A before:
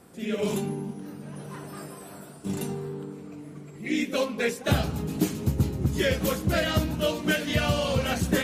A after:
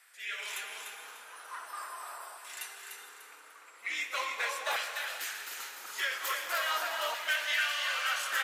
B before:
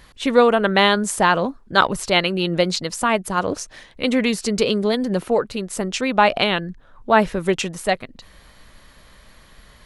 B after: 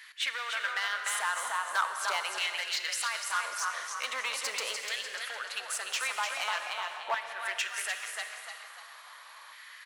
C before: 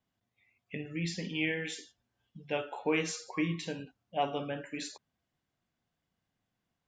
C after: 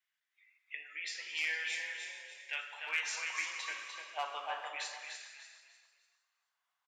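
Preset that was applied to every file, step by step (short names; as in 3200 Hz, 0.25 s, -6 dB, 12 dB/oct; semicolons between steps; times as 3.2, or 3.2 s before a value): HPF 470 Hz 12 dB/oct; compressor 4:1, threshold -27 dBFS; frequency-shifting echo 0.297 s, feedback 36%, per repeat +33 Hz, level -6 dB; hard clip -24.5 dBFS; LFO high-pass saw down 0.42 Hz 930–1900 Hz; non-linear reverb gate 0.49 s flat, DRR 6.5 dB; gain -2.5 dB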